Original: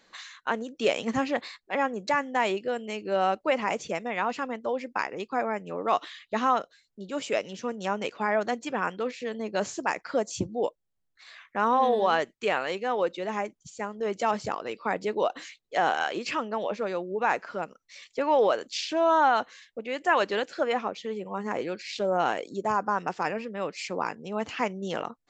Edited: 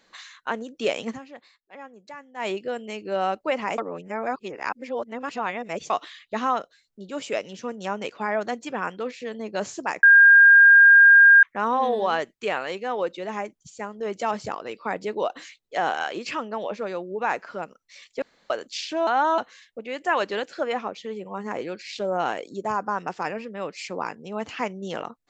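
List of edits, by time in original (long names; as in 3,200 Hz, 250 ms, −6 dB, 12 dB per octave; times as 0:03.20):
0:01.07–0:02.48: duck −15.5 dB, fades 0.12 s
0:03.78–0:05.90: reverse
0:10.03–0:11.43: beep over 1,610 Hz −8.5 dBFS
0:18.22–0:18.50: fill with room tone
0:19.07–0:19.38: reverse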